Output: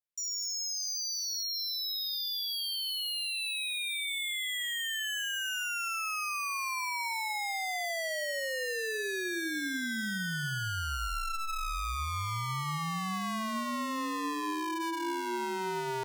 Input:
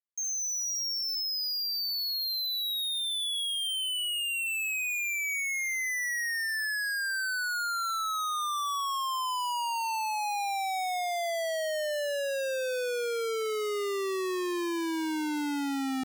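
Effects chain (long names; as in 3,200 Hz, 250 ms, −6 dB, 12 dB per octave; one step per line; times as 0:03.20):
ring modulation 660 Hz
on a send: convolution reverb RT60 0.75 s, pre-delay 46 ms, DRR 18 dB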